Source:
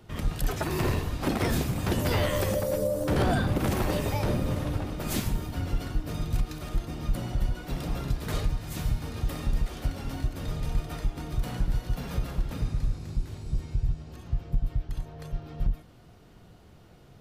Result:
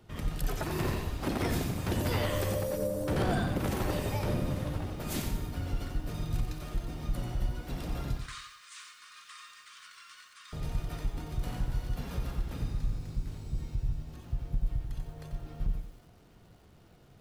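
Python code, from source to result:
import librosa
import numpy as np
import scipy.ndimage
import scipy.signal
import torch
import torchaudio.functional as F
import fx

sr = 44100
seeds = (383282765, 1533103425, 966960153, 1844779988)

y = fx.brickwall_bandpass(x, sr, low_hz=1000.0, high_hz=9800.0, at=(8.17, 10.53))
y = fx.echo_crushed(y, sr, ms=90, feedback_pct=35, bits=9, wet_db=-7.0)
y = F.gain(torch.from_numpy(y), -5.0).numpy()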